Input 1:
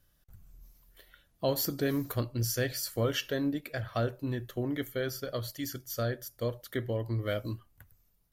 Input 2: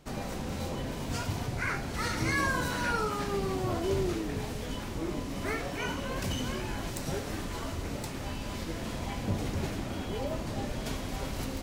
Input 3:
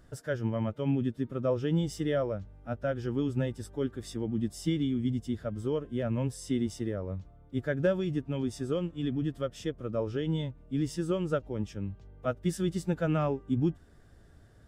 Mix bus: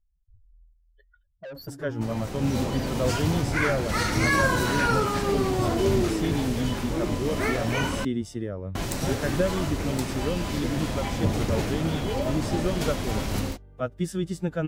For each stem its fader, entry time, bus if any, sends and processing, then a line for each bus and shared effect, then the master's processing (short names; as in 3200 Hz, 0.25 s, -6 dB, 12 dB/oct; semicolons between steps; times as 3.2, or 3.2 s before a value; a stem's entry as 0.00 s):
-1.0 dB, 0.00 s, no send, spectral contrast raised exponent 3.4; LPF 1900 Hz 6 dB/oct; soft clip -35.5 dBFS, distortion -8 dB
-1.5 dB, 1.95 s, muted 8.05–8.75, no send, AGC gain up to 8 dB
+1.5 dB, 1.55 s, no send, dry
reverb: off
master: dry